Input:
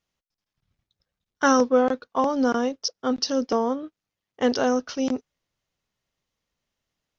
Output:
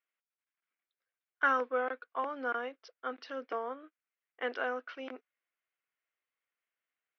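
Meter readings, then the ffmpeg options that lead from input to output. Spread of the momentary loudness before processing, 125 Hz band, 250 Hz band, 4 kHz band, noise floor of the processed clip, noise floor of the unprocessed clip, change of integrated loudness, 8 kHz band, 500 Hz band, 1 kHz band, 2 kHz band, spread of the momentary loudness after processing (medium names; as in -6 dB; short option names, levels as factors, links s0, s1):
8 LU, under -25 dB, -23.0 dB, -18.5 dB, under -85 dBFS, under -85 dBFS, -11.5 dB, no reading, -13.5 dB, -9.0 dB, -3.0 dB, 15 LU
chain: -af "highpass=f=400:w=0.5412,highpass=f=400:w=1.3066,equalizer=f=410:t=q:w=4:g=-7,equalizer=f=570:t=q:w=4:g=-7,equalizer=f=870:t=q:w=4:g=-8,equalizer=f=1500:t=q:w=4:g=5,equalizer=f=2200:t=q:w=4:g=5,lowpass=f=2800:w=0.5412,lowpass=f=2800:w=1.3066,volume=0.447"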